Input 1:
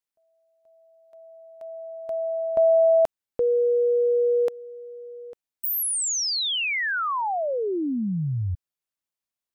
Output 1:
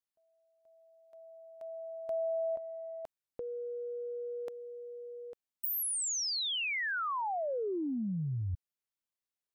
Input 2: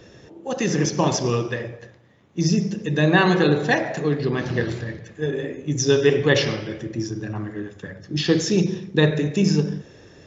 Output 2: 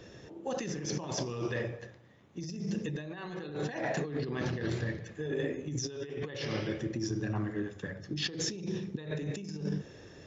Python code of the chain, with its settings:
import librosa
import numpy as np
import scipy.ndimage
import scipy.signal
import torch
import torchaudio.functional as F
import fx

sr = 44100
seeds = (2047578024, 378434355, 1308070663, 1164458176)

y = fx.over_compress(x, sr, threshold_db=-27.0, ratio=-1.0)
y = F.gain(torch.from_numpy(y), -9.0).numpy()